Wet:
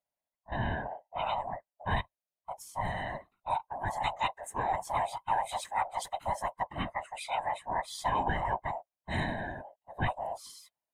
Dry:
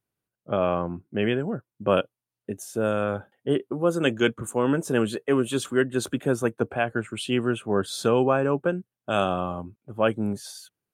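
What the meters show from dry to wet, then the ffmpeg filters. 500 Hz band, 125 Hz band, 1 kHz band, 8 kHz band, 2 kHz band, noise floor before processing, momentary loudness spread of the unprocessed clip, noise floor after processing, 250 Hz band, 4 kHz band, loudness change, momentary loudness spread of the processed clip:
−15.5 dB, −8.5 dB, +0.5 dB, −8.5 dB, −6.5 dB, below −85 dBFS, 10 LU, below −85 dBFS, −18.0 dB, −8.5 dB, −9.0 dB, 10 LU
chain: -af "afftfilt=real='real(if(lt(b,1008),b+24*(1-2*mod(floor(b/24),2)),b),0)':imag='imag(if(lt(b,1008),b+24*(1-2*mod(floor(b/24),2)),b),0)':win_size=2048:overlap=0.75,afftfilt=real='hypot(re,im)*cos(2*PI*random(0))':imag='hypot(re,im)*sin(2*PI*random(1))':win_size=512:overlap=0.75,volume=-2.5dB"

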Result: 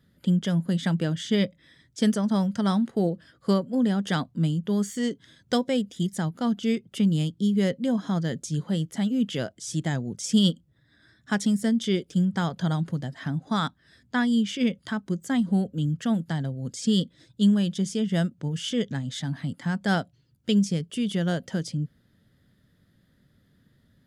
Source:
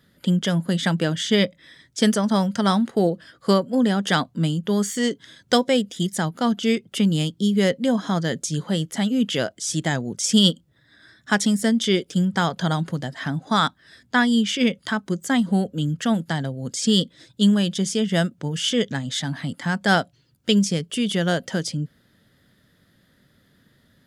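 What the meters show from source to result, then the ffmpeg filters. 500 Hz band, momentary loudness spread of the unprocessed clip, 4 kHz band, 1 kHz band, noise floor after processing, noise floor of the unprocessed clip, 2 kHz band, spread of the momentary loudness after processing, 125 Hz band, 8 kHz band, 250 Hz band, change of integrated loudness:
−6.5 dB, 7 LU, −9.0 dB, −8.0 dB, −65 dBFS, −61 dBFS, −8.5 dB, 7 LU, −2.0 dB, −9.0 dB, −3.0 dB, −4.0 dB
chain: -af "lowshelf=frequency=270:gain=10,volume=-9dB"

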